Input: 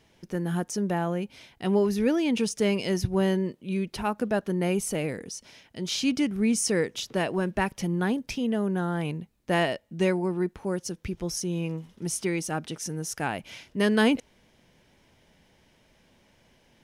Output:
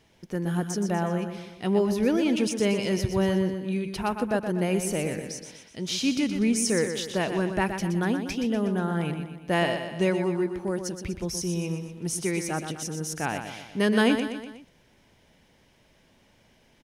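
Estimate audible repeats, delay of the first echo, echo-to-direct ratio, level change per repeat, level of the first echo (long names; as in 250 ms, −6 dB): 4, 122 ms, −6.5 dB, −6.0 dB, −8.0 dB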